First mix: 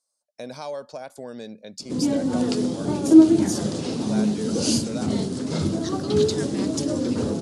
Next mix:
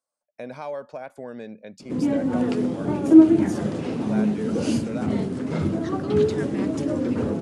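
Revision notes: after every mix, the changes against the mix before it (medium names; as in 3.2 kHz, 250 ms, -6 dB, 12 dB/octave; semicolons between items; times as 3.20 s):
master: add resonant high shelf 3.2 kHz -11 dB, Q 1.5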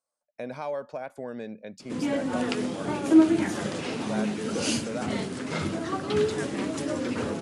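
background: add tilt shelf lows -8 dB, about 840 Hz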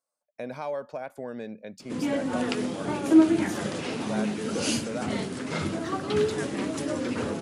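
master: remove low-pass 11 kHz 24 dB/octave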